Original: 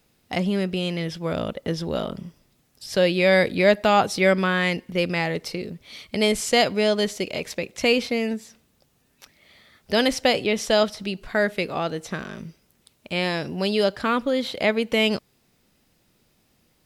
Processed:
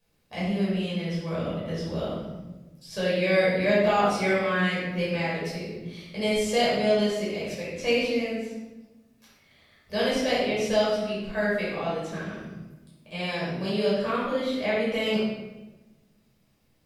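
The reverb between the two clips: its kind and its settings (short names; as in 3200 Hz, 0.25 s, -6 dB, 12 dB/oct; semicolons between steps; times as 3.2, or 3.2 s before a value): shoebox room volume 600 m³, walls mixed, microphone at 5.5 m; gain -16.5 dB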